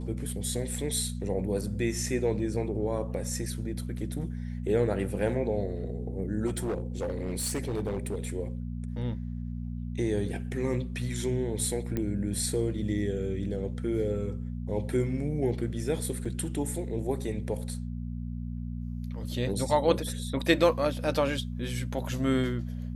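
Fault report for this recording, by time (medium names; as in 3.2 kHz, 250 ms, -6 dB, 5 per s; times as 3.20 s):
hum 60 Hz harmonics 4 -35 dBFS
6.46–8.25 s: clipped -26.5 dBFS
11.97 s: pop -18 dBFS
16.25 s: dropout 4.9 ms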